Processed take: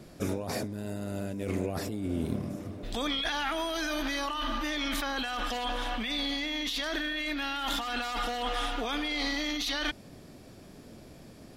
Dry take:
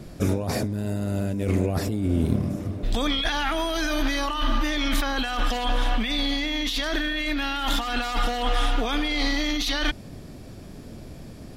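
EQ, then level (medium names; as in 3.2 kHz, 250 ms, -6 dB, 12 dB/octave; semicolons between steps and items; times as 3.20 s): bass shelf 140 Hz -10.5 dB; -5.0 dB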